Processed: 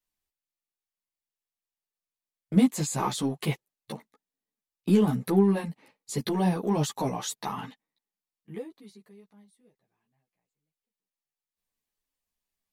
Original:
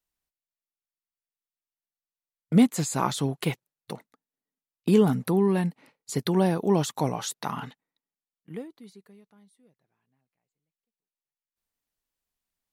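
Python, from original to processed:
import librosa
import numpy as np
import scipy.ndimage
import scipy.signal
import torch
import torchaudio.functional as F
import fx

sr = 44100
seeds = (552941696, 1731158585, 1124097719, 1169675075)

p1 = fx.notch(x, sr, hz=1400.0, q=9.2)
p2 = np.clip(p1, -10.0 ** (-26.5 / 20.0), 10.0 ** (-26.5 / 20.0))
p3 = p1 + (p2 * librosa.db_to_amplitude(-10.5))
y = fx.ensemble(p3, sr)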